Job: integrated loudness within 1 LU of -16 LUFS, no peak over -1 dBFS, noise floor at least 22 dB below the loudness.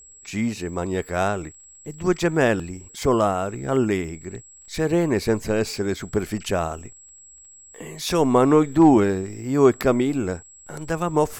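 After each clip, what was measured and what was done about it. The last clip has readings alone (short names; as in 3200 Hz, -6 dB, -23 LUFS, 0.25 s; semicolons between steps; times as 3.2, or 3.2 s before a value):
ticks 26/s; steady tone 7700 Hz; tone level -45 dBFS; loudness -22.0 LUFS; peak -4.5 dBFS; loudness target -16.0 LUFS
-> de-click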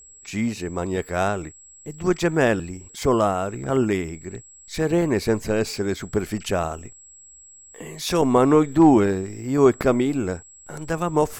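ticks 0.18/s; steady tone 7700 Hz; tone level -45 dBFS
-> notch 7700 Hz, Q 30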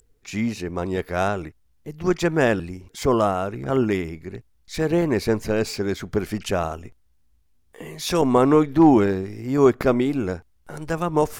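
steady tone none; loudness -22.0 LUFS; peak -4.0 dBFS; loudness target -16.0 LUFS
-> gain +6 dB; limiter -1 dBFS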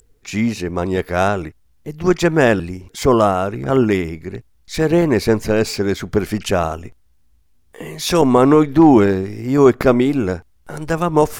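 loudness -16.5 LUFS; peak -1.0 dBFS; noise floor -55 dBFS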